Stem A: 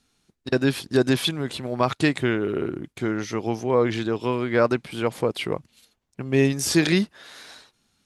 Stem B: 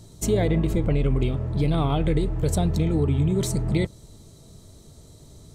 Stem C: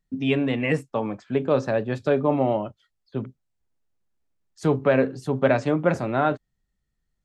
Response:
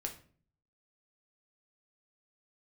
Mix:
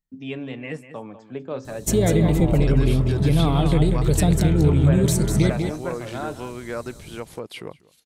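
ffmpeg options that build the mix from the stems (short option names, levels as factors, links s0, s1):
-filter_complex "[0:a]acompressor=threshold=0.0562:ratio=1.5,adelay=2150,volume=0.422,asplit=2[s0][s1];[s1]volume=0.0708[s2];[1:a]equalizer=f=170:w=1.5:g=3.5,adelay=1650,volume=1.19,asplit=2[s3][s4];[s4]volume=0.473[s5];[2:a]volume=0.335,asplit=2[s6][s7];[s7]volume=0.237[s8];[s2][s5][s8]amix=inputs=3:normalize=0,aecho=0:1:196:1[s9];[s0][s3][s6][s9]amix=inputs=4:normalize=0,highshelf=f=7000:g=7"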